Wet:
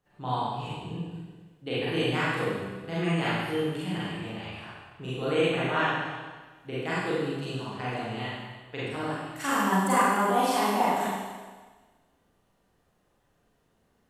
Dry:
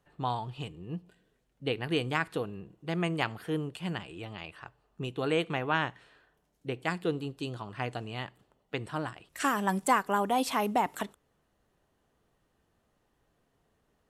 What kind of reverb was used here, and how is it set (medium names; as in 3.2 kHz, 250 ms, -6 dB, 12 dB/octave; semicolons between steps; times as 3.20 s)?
Schroeder reverb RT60 1.4 s, combs from 32 ms, DRR -9.5 dB; trim -6 dB